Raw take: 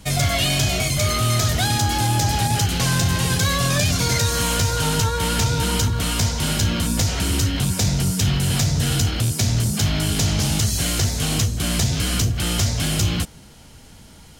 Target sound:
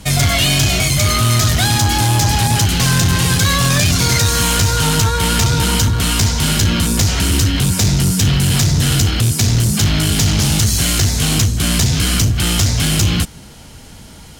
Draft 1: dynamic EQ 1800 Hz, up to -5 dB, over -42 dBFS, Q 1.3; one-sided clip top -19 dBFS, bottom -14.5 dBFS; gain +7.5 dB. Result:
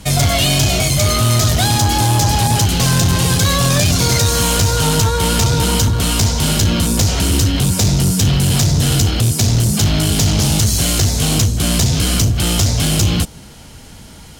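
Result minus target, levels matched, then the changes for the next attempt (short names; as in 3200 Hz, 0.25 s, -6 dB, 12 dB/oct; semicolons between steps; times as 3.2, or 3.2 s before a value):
500 Hz band +3.5 dB
change: dynamic EQ 570 Hz, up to -5 dB, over -42 dBFS, Q 1.3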